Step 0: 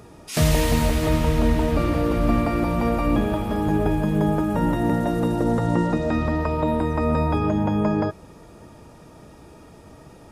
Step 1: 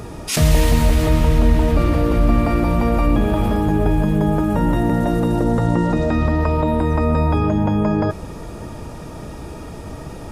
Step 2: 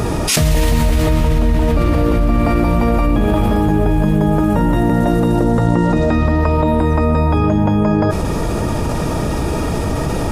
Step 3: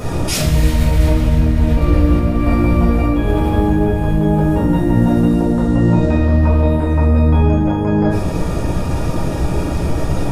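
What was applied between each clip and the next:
in parallel at 0 dB: compressor with a negative ratio -30 dBFS, ratio -1; on the sum: bass shelf 70 Hz +9.5 dB
level flattener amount 70%; trim -1.5 dB
simulated room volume 130 m³, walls mixed, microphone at 2 m; trim -10.5 dB

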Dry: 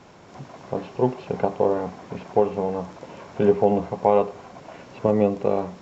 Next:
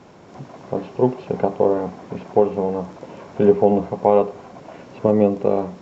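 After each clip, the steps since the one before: peaking EQ 290 Hz +5.5 dB 2.9 oct; trim -1 dB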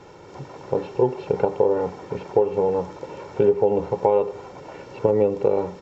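comb 2.2 ms, depth 61%; compression 4:1, threshold -15 dBFS, peak gain reduction 9 dB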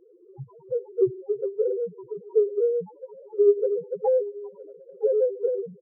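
loudest bins only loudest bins 1; delay 966 ms -20.5 dB; transient shaper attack +4 dB, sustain -1 dB; trim +3 dB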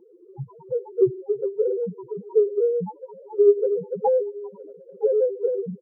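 small resonant body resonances 210/880 Hz, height 15 dB, ringing for 40 ms

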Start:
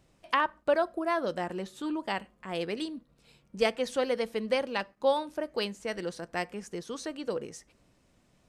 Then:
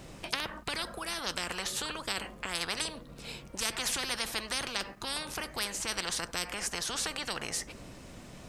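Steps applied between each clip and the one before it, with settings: spectrum-flattening compressor 10:1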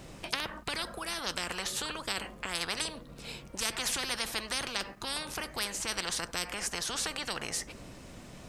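no audible change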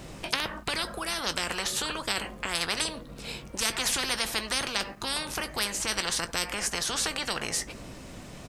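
doubling 19 ms -13 dB; trim +4.5 dB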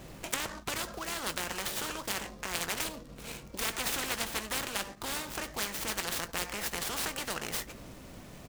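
delay time shaken by noise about 4.1 kHz, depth 0.051 ms; trim -4.5 dB

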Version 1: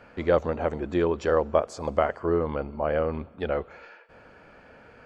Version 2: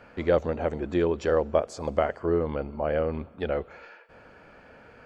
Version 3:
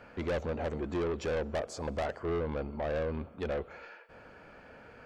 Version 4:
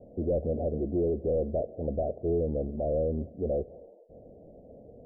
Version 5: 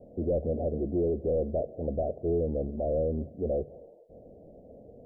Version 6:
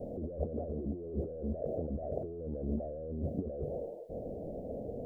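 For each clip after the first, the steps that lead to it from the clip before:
dynamic bell 1.1 kHz, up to -5 dB, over -39 dBFS, Q 1.7
saturation -27 dBFS, distortion -7 dB; trim -1.5 dB
steep low-pass 690 Hz 72 dB/octave; trim +5 dB
de-hum 48.99 Hz, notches 3
compressor with a negative ratio -39 dBFS, ratio -1; trim +1.5 dB

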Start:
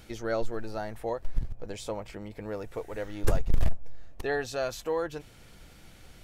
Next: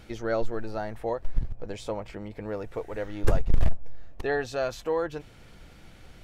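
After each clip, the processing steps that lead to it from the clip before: treble shelf 5.6 kHz -10 dB; trim +2.5 dB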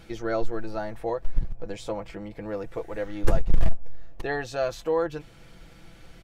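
comb 6 ms, depth 44%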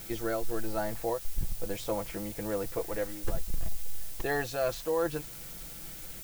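reverse; compression, threshold -25 dBFS, peak gain reduction 14 dB; reverse; added noise blue -45 dBFS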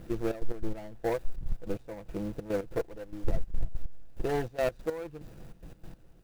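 median filter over 41 samples; trance gate "xxx.x.x..." 144 bpm -12 dB; trim +4 dB

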